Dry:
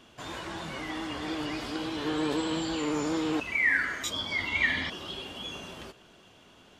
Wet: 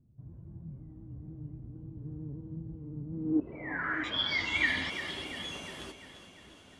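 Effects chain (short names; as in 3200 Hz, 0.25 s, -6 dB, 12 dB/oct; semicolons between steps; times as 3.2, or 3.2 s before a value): low-pass sweep 130 Hz -> 10000 Hz, 3.07–4.62; on a send: split-band echo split 360 Hz, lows 0.633 s, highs 0.348 s, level -11.5 dB; on the sum: gain -2.5 dB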